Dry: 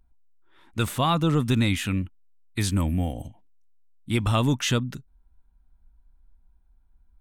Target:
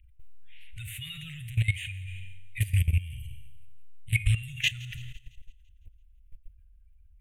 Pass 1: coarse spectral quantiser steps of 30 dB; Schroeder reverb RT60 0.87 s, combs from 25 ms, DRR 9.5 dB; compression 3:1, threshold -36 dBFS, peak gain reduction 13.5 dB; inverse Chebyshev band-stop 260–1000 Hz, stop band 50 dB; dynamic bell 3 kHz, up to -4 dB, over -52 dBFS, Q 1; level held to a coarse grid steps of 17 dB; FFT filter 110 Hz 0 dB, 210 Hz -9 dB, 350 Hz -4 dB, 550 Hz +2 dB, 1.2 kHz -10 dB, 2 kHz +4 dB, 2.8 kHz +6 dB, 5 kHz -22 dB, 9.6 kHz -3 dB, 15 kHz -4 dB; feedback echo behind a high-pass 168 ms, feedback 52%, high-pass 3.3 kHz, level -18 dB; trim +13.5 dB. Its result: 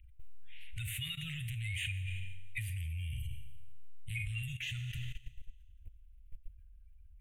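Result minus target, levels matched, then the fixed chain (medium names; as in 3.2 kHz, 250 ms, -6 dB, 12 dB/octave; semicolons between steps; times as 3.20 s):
compression: peak gain reduction +4.5 dB
coarse spectral quantiser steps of 30 dB; Schroeder reverb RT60 0.87 s, combs from 25 ms, DRR 9.5 dB; compression 3:1, threshold -29 dBFS, peak gain reduction 9 dB; inverse Chebyshev band-stop 260–1000 Hz, stop band 50 dB; dynamic bell 3 kHz, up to -4 dB, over -52 dBFS, Q 1; level held to a coarse grid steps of 17 dB; FFT filter 110 Hz 0 dB, 210 Hz -9 dB, 350 Hz -4 dB, 550 Hz +2 dB, 1.2 kHz -10 dB, 2 kHz +4 dB, 2.8 kHz +6 dB, 5 kHz -22 dB, 9.6 kHz -3 dB, 15 kHz -4 dB; feedback echo behind a high-pass 168 ms, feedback 52%, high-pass 3.3 kHz, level -18 dB; trim +13.5 dB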